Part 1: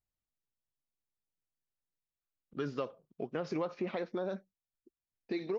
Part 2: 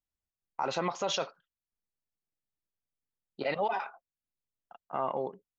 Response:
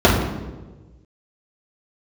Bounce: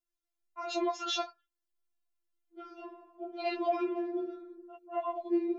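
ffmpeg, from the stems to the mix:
-filter_complex "[0:a]lowpass=5.8k,asoftclip=type=tanh:threshold=-28.5dB,volume=-14.5dB,asplit=2[a][b];[b]volume=-15dB[c];[1:a]volume=1.5dB,asplit=2[d][e];[e]apad=whole_len=246274[f];[a][f]sidechaincompress=threshold=-37dB:ratio=8:attack=16:release=301[g];[2:a]atrim=start_sample=2205[h];[c][h]afir=irnorm=-1:irlink=0[i];[g][d][i]amix=inputs=3:normalize=0,afftfilt=real='re*4*eq(mod(b,16),0)':imag='im*4*eq(mod(b,16),0)':win_size=2048:overlap=0.75"

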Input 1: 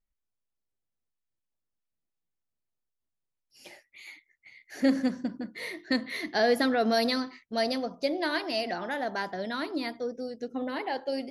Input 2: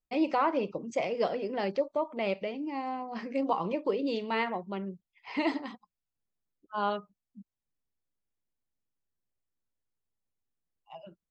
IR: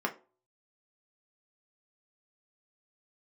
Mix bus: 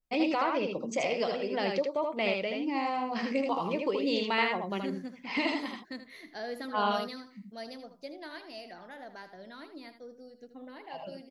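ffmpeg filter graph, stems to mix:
-filter_complex "[0:a]volume=-14.5dB,asplit=2[a][b];[b]volume=-11dB[c];[1:a]alimiter=limit=-23dB:level=0:latency=1:release=464,adynamicequalizer=threshold=0.00398:dfrequency=1800:dqfactor=0.7:tfrequency=1800:tqfactor=0.7:attack=5:release=100:ratio=0.375:range=3.5:mode=boostabove:tftype=highshelf,volume=2.5dB,asplit=2[d][e];[e]volume=-3.5dB[f];[c][f]amix=inputs=2:normalize=0,aecho=0:1:79:1[g];[a][d][g]amix=inputs=3:normalize=0"

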